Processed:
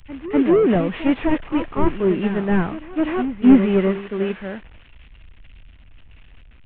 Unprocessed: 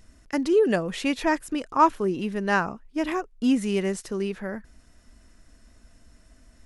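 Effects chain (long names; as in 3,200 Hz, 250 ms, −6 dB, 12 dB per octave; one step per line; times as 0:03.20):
linear delta modulator 16 kbit/s, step −37.5 dBFS
backwards echo 249 ms −8 dB
multiband upward and downward expander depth 100%
level +7 dB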